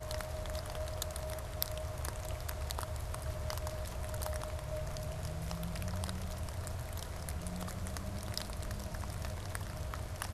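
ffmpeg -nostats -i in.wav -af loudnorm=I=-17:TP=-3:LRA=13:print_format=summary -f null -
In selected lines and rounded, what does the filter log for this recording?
Input Integrated:    -40.8 LUFS
Input True Peak:      -9.2 dBTP
Input LRA:             1.2 LU
Input Threshold:     -50.8 LUFS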